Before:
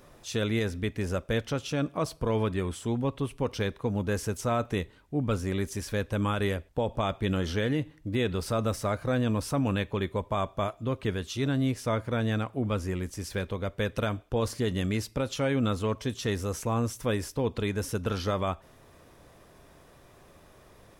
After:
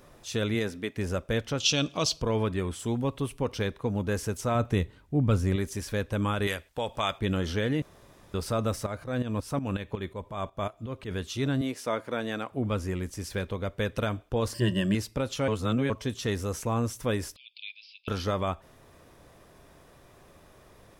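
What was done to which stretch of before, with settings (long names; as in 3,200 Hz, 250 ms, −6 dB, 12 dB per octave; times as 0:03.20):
0:00.54–0:00.96: high-pass filter 100 Hz → 320 Hz
0:01.60–0:02.22: flat-topped bell 4,300 Hz +15.5 dB
0:02.79–0:03.39: high-shelf EQ 5,600 Hz +7 dB
0:04.55–0:05.56: parametric band 91 Hz +7 dB 2.5 octaves
0:06.47–0:07.19: tilt shelving filter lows −8 dB, about 830 Hz
0:07.82–0:08.34: fill with room tone
0:08.86–0:11.11: shaped tremolo saw up 5.5 Hz, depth 75%
0:11.61–0:12.52: high-pass filter 270 Hz
0:14.54–0:14.95: EQ curve with evenly spaced ripples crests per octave 1.3, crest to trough 16 dB
0:15.48–0:15.90: reverse
0:17.36–0:18.08: Chebyshev band-pass filter 2,300–5,000 Hz, order 5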